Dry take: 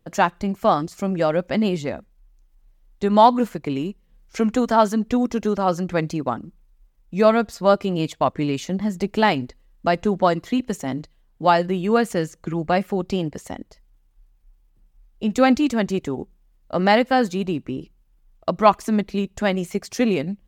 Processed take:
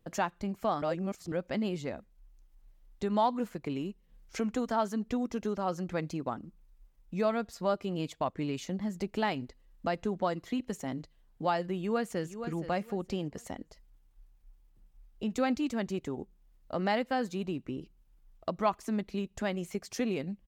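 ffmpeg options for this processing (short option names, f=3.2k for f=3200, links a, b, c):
-filter_complex "[0:a]asplit=2[a][b];[b]afade=t=in:st=11.76:d=0.01,afade=t=out:st=12.4:d=0.01,aecho=0:1:470|940|1410:0.223872|0.055968|0.013992[c];[a][c]amix=inputs=2:normalize=0,asplit=3[d][e][f];[d]atrim=end=0.822[g];[e]atrim=start=0.818:end=1.322,asetpts=PTS-STARTPTS,areverse[h];[f]atrim=start=1.318[i];[g][h]acrossfade=d=0.004:c1=hsin:c2=hsin[j];[j][i]acrossfade=d=0.004:c1=hsin:c2=hsin,acompressor=threshold=-40dB:ratio=1.5,volume=-3.5dB"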